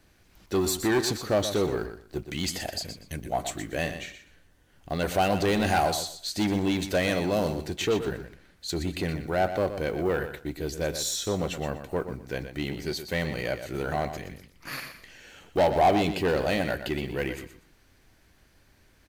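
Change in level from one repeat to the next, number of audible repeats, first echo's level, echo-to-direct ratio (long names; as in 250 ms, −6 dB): −13.5 dB, 2, −10.0 dB, −10.0 dB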